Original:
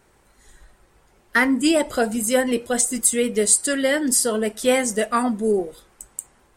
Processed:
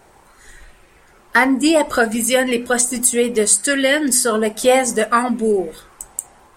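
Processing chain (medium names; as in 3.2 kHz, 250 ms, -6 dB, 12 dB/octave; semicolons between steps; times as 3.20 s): hum notches 50/100/150/200/250 Hz; in parallel at +2 dB: compression, threshold -26 dBFS, peak gain reduction 14 dB; on the sum: sweeping bell 0.64 Hz 730–2600 Hz +8 dB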